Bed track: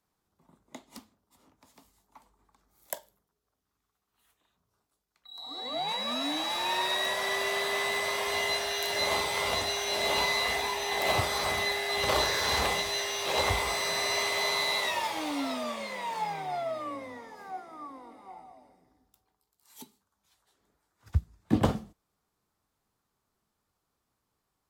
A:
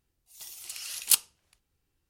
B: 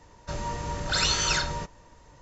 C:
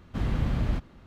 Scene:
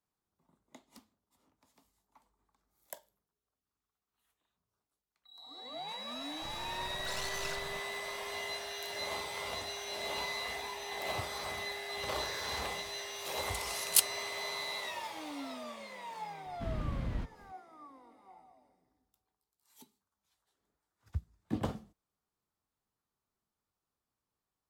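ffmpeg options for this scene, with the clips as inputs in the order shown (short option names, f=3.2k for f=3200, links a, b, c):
-filter_complex "[0:a]volume=-10dB[a];[2:a]aeval=exprs='max(val(0),0)':c=same,atrim=end=2.21,asetpts=PTS-STARTPTS,volume=-12dB,afade=t=in:d=0.004:c=hsin,afade=t=out:st=2.206:d=0.004:c=hsin,adelay=6140[b];[1:a]atrim=end=2.09,asetpts=PTS-STARTPTS,volume=-3.5dB,afade=t=in:d=0.004:c=hsin,afade=t=out:st=2.086:d=0.004:c=hsin,adelay=12850[c];[3:a]atrim=end=1.06,asetpts=PTS-STARTPTS,volume=-9.5dB,afade=t=in:d=0.004:c=hsin,afade=t=out:st=1.056:d=0.004:c=hsin,adelay=16460[d];[a][b][c][d]amix=inputs=4:normalize=0"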